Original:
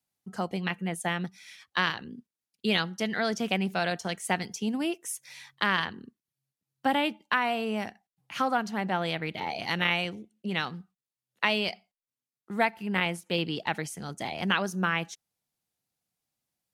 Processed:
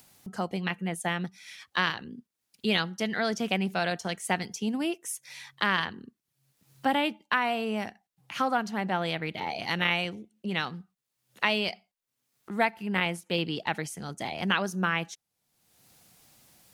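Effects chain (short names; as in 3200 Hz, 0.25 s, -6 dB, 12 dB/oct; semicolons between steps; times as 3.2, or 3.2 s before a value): upward compressor, threshold -38 dBFS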